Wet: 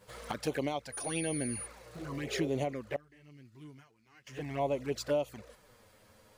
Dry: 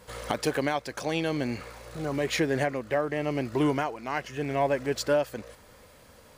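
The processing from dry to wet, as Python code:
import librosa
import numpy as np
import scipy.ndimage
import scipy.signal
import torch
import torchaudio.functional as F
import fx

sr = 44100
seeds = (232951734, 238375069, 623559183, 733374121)

y = fx.tone_stack(x, sr, knobs='6-0-2', at=(2.96, 4.27))
y = fx.env_flanger(y, sr, rest_ms=11.1, full_db=-23.0)
y = fx.dmg_tone(y, sr, hz=9600.0, level_db=-34.0, at=(0.92, 1.65), fade=0.02)
y = fx.spec_repair(y, sr, seeds[0], start_s=2.02, length_s=0.44, low_hz=350.0, high_hz=910.0, source='both')
y = y * 10.0 ** (-4.5 / 20.0)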